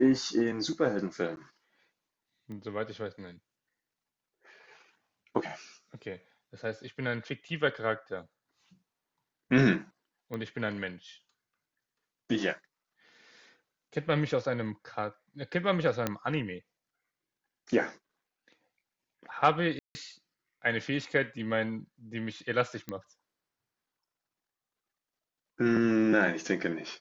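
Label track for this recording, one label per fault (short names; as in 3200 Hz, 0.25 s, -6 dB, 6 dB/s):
1.360000	1.370000	gap 11 ms
2.520000	2.520000	pop -33 dBFS
10.340000	10.340000	pop -25 dBFS
16.070000	16.070000	pop -14 dBFS
19.790000	19.950000	gap 0.16 s
22.890000	22.890000	pop -23 dBFS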